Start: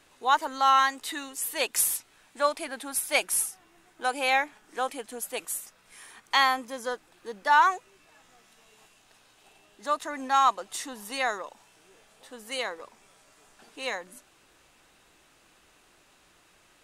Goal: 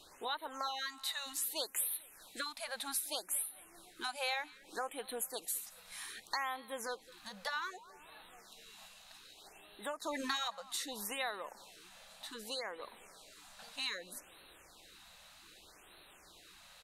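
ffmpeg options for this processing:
-filter_complex "[0:a]equalizer=f=125:t=o:w=0.33:g=-9,equalizer=f=250:t=o:w=0.33:g=-6,equalizer=f=4000:t=o:w=0.33:g=10,equalizer=f=12500:t=o:w=0.33:g=6,acompressor=threshold=0.0112:ratio=3,aecho=1:1:219|438|657|876:0.075|0.0397|0.0211|0.0112,asettb=1/sr,asplit=3[s0][s1][s2];[s0]atrim=end=10.044[s3];[s1]atrim=start=10.04:end=10.48,asetpts=PTS-STARTPTS,afade=t=in:d=0.004:c=qsin,afade=t=out:st=0.436:d=0.004:c=qsin,acontrast=28[s4];[s2]atrim=start=10.476[s5];[s3][s4]acrossfade=d=0.004:c1=hsin:c2=qsin[s6];[s6][s5]acrossfade=d=0.004:c1=qsin:c2=hsin,asettb=1/sr,asplit=3[s7][s8][s9];[s7]atrim=end=12.344[s10];[s8]atrim=start=12.34:end=12.82,asetpts=PTS-STARTPTS,afade=t=in:d=0.004:c=qsin,afade=t=out:st=0.476:d=0.004:c=qsin,highshelf=f=6800:g=-7[s11];[s9]atrim=start=12.816[s12];[s10][s11]acrossfade=d=0.004:c1=hsin:c2=qsin[s13];[s13][s12]acrossfade=d=0.004:c1=qsin:c2=hsin,afftfilt=real='re*lt(hypot(re,im),0.141)':imag='im*lt(hypot(re,im),0.141)':win_size=1024:overlap=0.75,afftfilt=real='re*(1-between(b*sr/1024,310*pow(6300/310,0.5+0.5*sin(2*PI*0.64*pts/sr))/1.41,310*pow(6300/310,0.5+0.5*sin(2*PI*0.64*pts/sr))*1.41))':imag='im*(1-between(b*sr/1024,310*pow(6300/310,0.5+0.5*sin(2*PI*0.64*pts/sr))/1.41,310*pow(6300/310,0.5+0.5*sin(2*PI*0.64*pts/sr))*1.41))':win_size=1024:overlap=0.75,volume=1.12"

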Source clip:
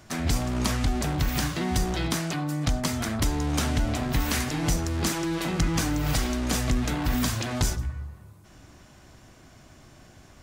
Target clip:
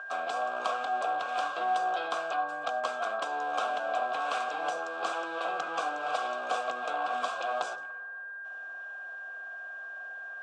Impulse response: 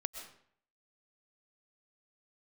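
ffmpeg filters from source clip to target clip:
-filter_complex "[0:a]aeval=exprs='val(0)+0.0282*sin(2*PI*1600*n/s)':c=same,asplit=3[s0][s1][s2];[s0]bandpass=f=730:t=q:w=8,volume=1[s3];[s1]bandpass=f=1090:t=q:w=8,volume=0.501[s4];[s2]bandpass=f=2440:t=q:w=8,volume=0.355[s5];[s3][s4][s5]amix=inputs=3:normalize=0,highpass=450,equalizer=f=500:t=q:w=4:g=9,equalizer=f=960:t=q:w=4:g=3,equalizer=f=1400:t=q:w=4:g=9,equalizer=f=2400:t=q:w=4:g=-6,equalizer=f=3500:t=q:w=4:g=6,equalizer=f=8100:t=q:w=4:g=7,lowpass=f=9100:w=0.5412,lowpass=f=9100:w=1.3066,volume=2.51"

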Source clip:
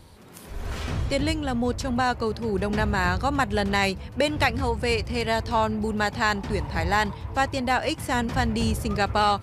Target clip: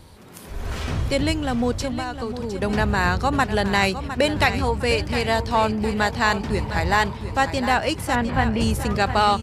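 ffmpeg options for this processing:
-filter_complex "[0:a]asettb=1/sr,asplit=3[s0][s1][s2];[s0]atrim=end=1.844[s3];[s1]atrim=start=1.84:end=2.62,asetpts=PTS-STARTPTS,afade=t=in:d=0.004:c=qsin,afade=t=out:st=0.776:d=0.004:c=qsin,acompressor=threshold=0.0355:ratio=6[s4];[s2]atrim=start=2.616[s5];[s3][s4]acrossfade=d=0.004:c1=hsin:c2=qsin[s6];[s6][s5]acrossfade=d=0.004:c1=qsin:c2=hsin,asettb=1/sr,asplit=3[s7][s8][s9];[s7]atrim=end=8.154[s10];[s8]atrim=start=8.15:end=8.61,asetpts=PTS-STARTPTS,afade=t=in:d=0.004:c=qsin,afade=t=out:st=0.456:d=0.004:c=qsin,lowpass=f=2900:w=0.5412,lowpass=f=2900:w=1.3066[s11];[s9]atrim=start=8.606[s12];[s10][s11]acrossfade=d=0.004:c1=hsin:c2=qsin[s13];[s13][s12]acrossfade=d=0.004:c1=qsin:c2=hsin,aecho=1:1:708|1416|2124|2832:0.282|0.116|0.0474|0.0194,volume=1.41"

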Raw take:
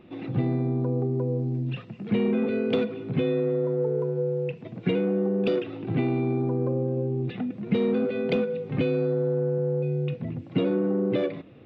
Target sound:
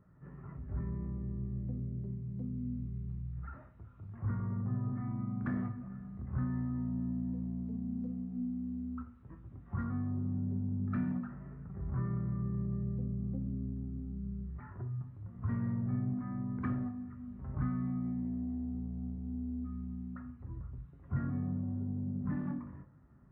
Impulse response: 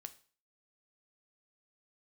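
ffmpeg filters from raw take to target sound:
-filter_complex "[0:a]flanger=delay=8.9:depth=5.4:regen=-57:speed=0.21:shape=triangular,asetrate=22050,aresample=44100[s0];[1:a]atrim=start_sample=2205[s1];[s0][s1]afir=irnorm=-1:irlink=0,volume=0.841"

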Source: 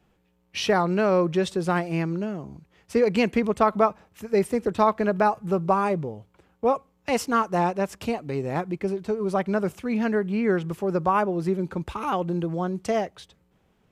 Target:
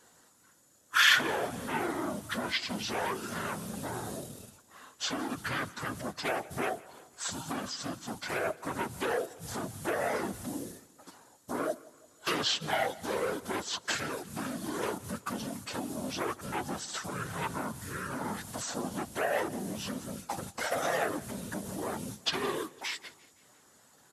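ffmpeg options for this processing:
-filter_complex "[0:a]asplit=2[s0][s1];[s1]acrusher=bits=5:mode=log:mix=0:aa=0.000001,volume=0.562[s2];[s0][s2]amix=inputs=2:normalize=0,acrossover=split=7800[s3][s4];[s4]acompressor=threshold=0.00178:ratio=4:attack=1:release=60[s5];[s3][s5]amix=inputs=2:normalize=0,equalizer=f=125:t=o:w=1:g=-8,equalizer=f=250:t=o:w=1:g=4,equalizer=f=4000:t=o:w=1:g=-9,equalizer=f=8000:t=o:w=1:g=-6,acompressor=threshold=0.0708:ratio=6,aeval=exprs='0.224*(cos(1*acos(clip(val(0)/0.224,-1,1)))-cos(1*PI/2))+0.0447*(cos(5*acos(clip(val(0)/0.224,-1,1)))-cos(5*PI/2))':c=same,apsyclip=14.1,afftfilt=real='hypot(re,im)*cos(2*PI*random(0))':imag='hypot(re,im)*sin(2*PI*random(1))':win_size=512:overlap=0.75,aderivative,asplit=2[s6][s7];[s7]aecho=0:1:99|198|297|396:0.0794|0.0421|0.0223|0.0118[s8];[s6][s8]amix=inputs=2:normalize=0,asetrate=25442,aresample=44100,volume=0.631"

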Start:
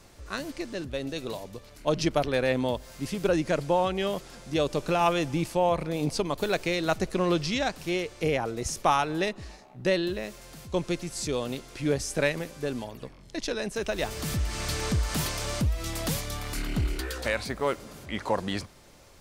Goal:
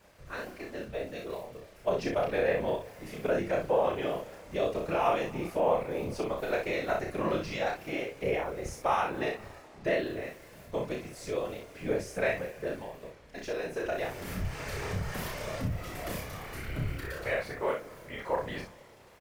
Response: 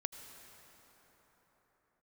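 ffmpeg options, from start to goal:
-filter_complex "[0:a]equalizer=f=250:t=o:w=1:g=-7,equalizer=f=500:t=o:w=1:g=6,equalizer=f=2000:t=o:w=1:g=5,equalizer=f=4000:t=o:w=1:g=-6,equalizer=f=8000:t=o:w=1:g=-7,asplit=2[s0][s1];[1:a]atrim=start_sample=2205,asetrate=70560,aresample=44100[s2];[s1][s2]afir=irnorm=-1:irlink=0,volume=0.631[s3];[s0][s3]amix=inputs=2:normalize=0,acrusher=bits=7:mix=0:aa=0.5,afftfilt=real='hypot(re,im)*cos(2*PI*random(0))':imag='hypot(re,im)*sin(2*PI*random(1))':win_size=512:overlap=0.75,aecho=1:1:32|61:0.668|0.531,volume=0.596"

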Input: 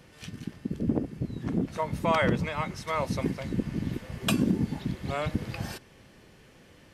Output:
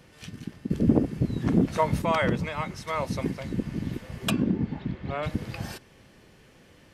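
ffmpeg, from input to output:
-filter_complex "[0:a]asettb=1/sr,asplit=3[s0][s1][s2];[s0]atrim=end=0.704[s3];[s1]atrim=start=0.7:end=2.02,asetpts=PTS-STARTPTS,afade=t=in:d=0.004:c=qsin,afade=t=out:st=1.316:d=0.004:c=qsin,acontrast=73[s4];[s2]atrim=start=2.016[s5];[s3][s4]acrossfade=d=0.004:c1=hsin:c2=qsin[s6];[s6][s5]acrossfade=d=0.004:c1=qsin:c2=hsin,asettb=1/sr,asplit=3[s7][s8][s9];[s7]atrim=end=4.304[s10];[s8]atrim=start=4.3:end=5.23,asetpts=PTS-STARTPTS,afade=t=in:d=0.004:c=qsin,afade=t=out:st=0.926:d=0.004:c=qsin,lowpass=2800[s11];[s9]atrim=start=5.226[s12];[s10][s11]acrossfade=d=0.004:c1=hsin:c2=qsin[s13];[s13][s12]acrossfade=d=0.004:c1=qsin:c2=hsin"

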